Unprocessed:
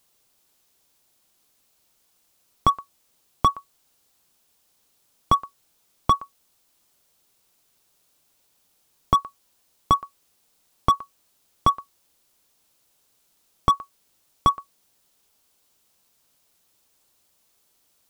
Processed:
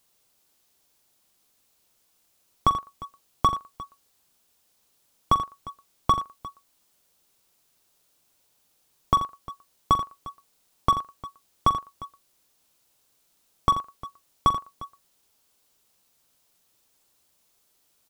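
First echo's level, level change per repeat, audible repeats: −12.5 dB, repeats not evenly spaced, 3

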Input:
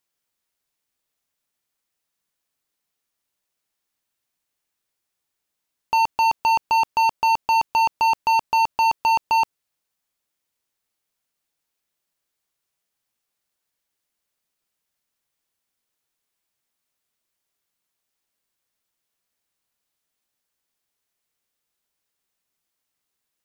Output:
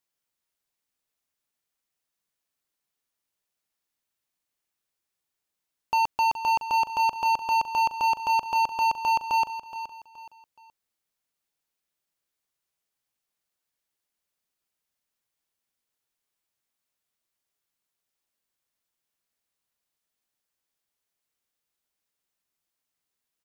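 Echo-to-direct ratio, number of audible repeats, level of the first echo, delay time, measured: −11.5 dB, 3, −12.0 dB, 422 ms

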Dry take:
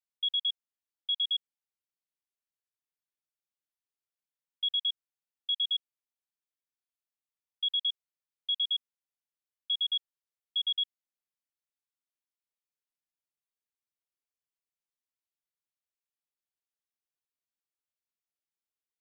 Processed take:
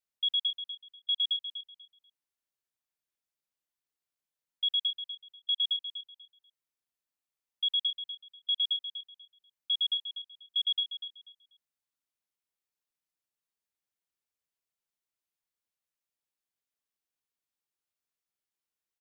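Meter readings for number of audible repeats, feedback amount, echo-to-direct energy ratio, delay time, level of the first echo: 2, 22%, −10.5 dB, 244 ms, −10.5 dB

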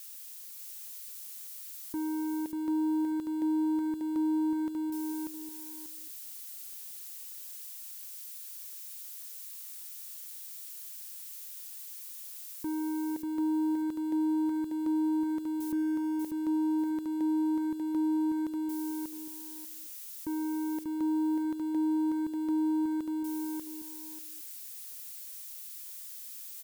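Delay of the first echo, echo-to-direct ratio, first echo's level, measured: 590 ms, −3.5 dB, −3.5 dB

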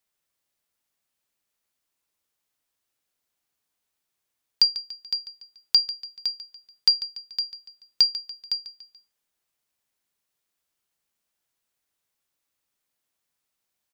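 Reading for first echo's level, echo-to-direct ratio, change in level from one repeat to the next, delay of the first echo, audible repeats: −14.0 dB, −13.0 dB, −6.5 dB, 144 ms, 3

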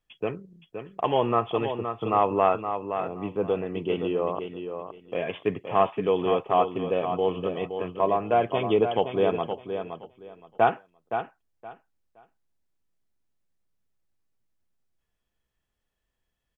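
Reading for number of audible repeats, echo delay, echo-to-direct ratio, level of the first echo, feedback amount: 2, 519 ms, −8.0 dB, −8.0 dB, 21%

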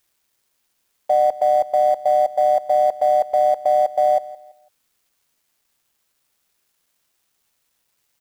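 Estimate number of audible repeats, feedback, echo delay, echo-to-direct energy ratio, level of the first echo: 2, 29%, 167 ms, −17.5 dB, −18.0 dB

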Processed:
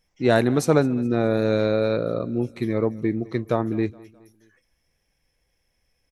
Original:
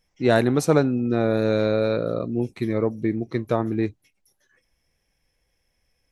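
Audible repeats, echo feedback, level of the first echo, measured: 2, 46%, −22.5 dB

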